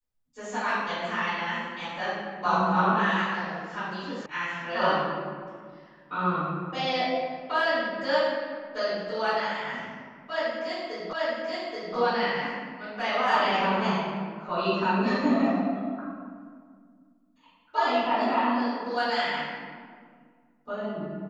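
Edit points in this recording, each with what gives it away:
0:04.26: cut off before it has died away
0:11.13: the same again, the last 0.83 s

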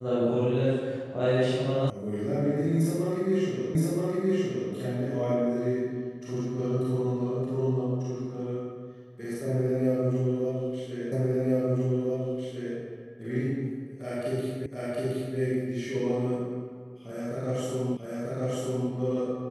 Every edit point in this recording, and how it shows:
0:01.90: cut off before it has died away
0:03.75: the same again, the last 0.97 s
0:11.12: the same again, the last 1.65 s
0:14.66: the same again, the last 0.72 s
0:17.97: the same again, the last 0.94 s

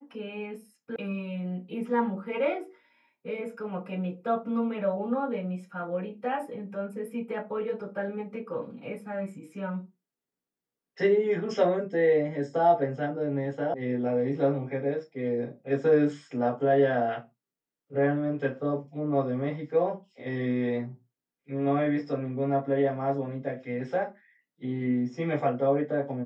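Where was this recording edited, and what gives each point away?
0:00.96: cut off before it has died away
0:13.74: cut off before it has died away

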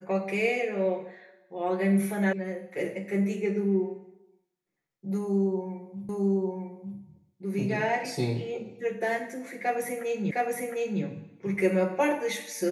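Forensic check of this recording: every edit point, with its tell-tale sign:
0:02.33: cut off before it has died away
0:06.09: the same again, the last 0.9 s
0:10.31: the same again, the last 0.71 s

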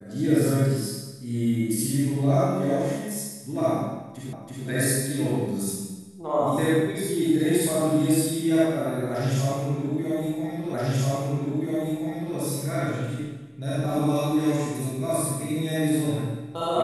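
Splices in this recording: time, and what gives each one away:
0:04.33: the same again, the last 0.33 s
0:10.74: the same again, the last 1.63 s

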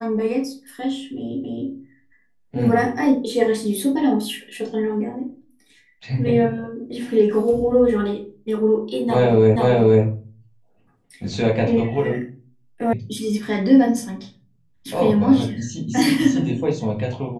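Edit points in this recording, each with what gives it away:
0:01.44: the same again, the last 0.27 s
0:09.56: the same again, the last 0.48 s
0:12.93: cut off before it has died away

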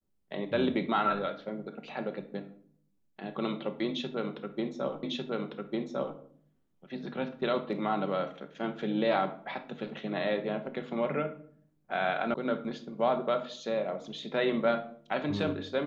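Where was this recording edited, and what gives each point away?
0:05.03: the same again, the last 1.15 s
0:12.34: cut off before it has died away

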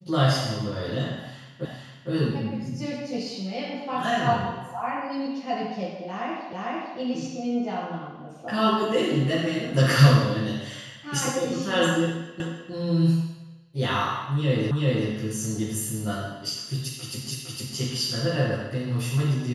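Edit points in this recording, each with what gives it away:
0:01.65: the same again, the last 0.46 s
0:06.53: the same again, the last 0.45 s
0:12.40: the same again, the last 0.31 s
0:14.71: the same again, the last 0.38 s
0:17.31: the same again, the last 0.46 s

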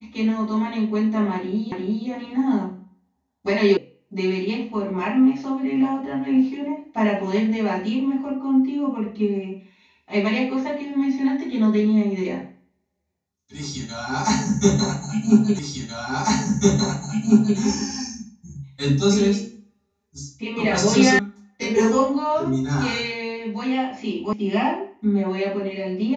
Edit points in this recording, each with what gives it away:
0:01.72: the same again, the last 0.35 s
0:03.77: cut off before it has died away
0:15.59: the same again, the last 2 s
0:21.19: cut off before it has died away
0:24.33: cut off before it has died away

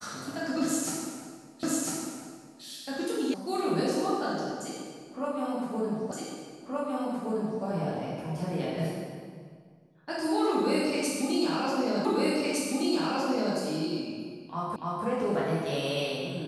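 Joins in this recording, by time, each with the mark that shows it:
0:01.63: the same again, the last 1 s
0:03.34: cut off before it has died away
0:06.11: the same again, the last 1.52 s
0:12.05: the same again, the last 1.51 s
0:14.76: the same again, the last 0.29 s

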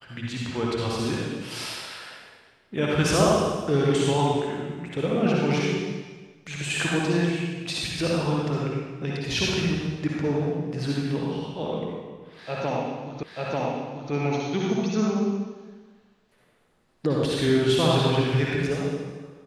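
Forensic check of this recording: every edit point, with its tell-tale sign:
0:13.23: the same again, the last 0.89 s

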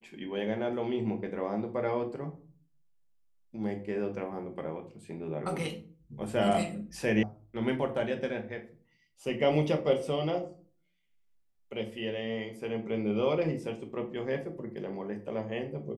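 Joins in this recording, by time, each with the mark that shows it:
0:07.23: cut off before it has died away

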